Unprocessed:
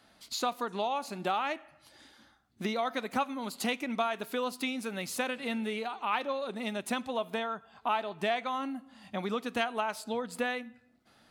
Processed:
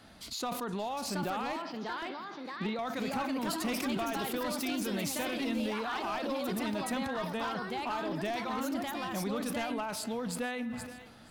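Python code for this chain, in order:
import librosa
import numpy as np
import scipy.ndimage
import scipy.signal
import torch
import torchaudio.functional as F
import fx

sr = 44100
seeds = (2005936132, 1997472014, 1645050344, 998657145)

p1 = fx.over_compress(x, sr, threshold_db=-43.0, ratio=-1.0)
p2 = x + (p1 * librosa.db_to_amplitude(1.5))
p3 = fx.echo_pitch(p2, sr, ms=794, semitones=3, count=2, db_per_echo=-3.0)
p4 = fx.cheby1_bandpass(p3, sr, low_hz=160.0, high_hz=4500.0, order=4, at=(1.52, 2.79))
p5 = p4 + fx.echo_thinned(p4, sr, ms=473, feedback_pct=54, hz=420.0, wet_db=-21.0, dry=0)
p6 = np.clip(p5, -10.0 ** (-23.0 / 20.0), 10.0 ** (-23.0 / 20.0))
p7 = fx.low_shelf(p6, sr, hz=240.0, db=9.0)
p8 = fx.sustainer(p7, sr, db_per_s=45.0)
y = p8 * librosa.db_to_amplitude(-7.0)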